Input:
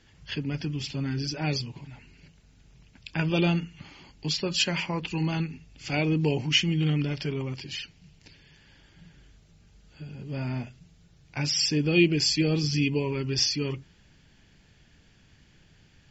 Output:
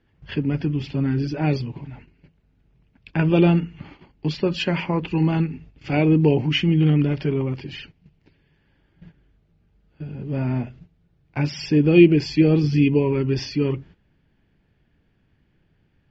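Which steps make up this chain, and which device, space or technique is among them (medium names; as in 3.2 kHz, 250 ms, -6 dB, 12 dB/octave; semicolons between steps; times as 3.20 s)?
phone in a pocket (low-pass 3.4 kHz 12 dB/octave; peaking EQ 340 Hz +3 dB 1.1 oct; treble shelf 2.3 kHz -10 dB); gate -50 dBFS, range -12 dB; trim +7 dB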